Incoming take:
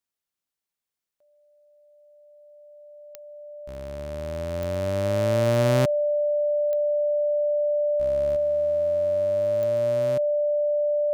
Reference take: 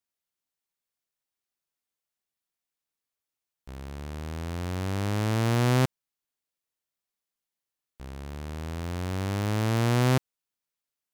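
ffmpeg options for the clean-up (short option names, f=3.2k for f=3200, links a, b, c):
-af "adeclick=t=4,bandreject=f=590:w=30,asetnsamples=n=441:p=0,asendcmd='8.36 volume volume 12dB',volume=0dB"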